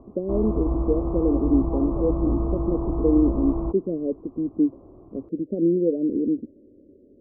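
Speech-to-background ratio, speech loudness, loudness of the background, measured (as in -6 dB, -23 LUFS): 2.0 dB, -25.0 LUFS, -27.0 LUFS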